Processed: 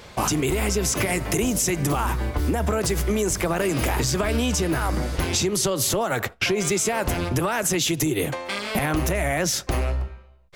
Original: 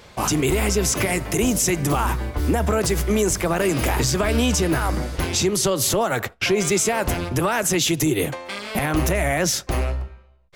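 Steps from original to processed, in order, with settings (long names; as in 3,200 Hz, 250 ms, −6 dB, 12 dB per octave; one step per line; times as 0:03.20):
downward compressor, threshold −22 dBFS, peak gain reduction 7 dB
level +2.5 dB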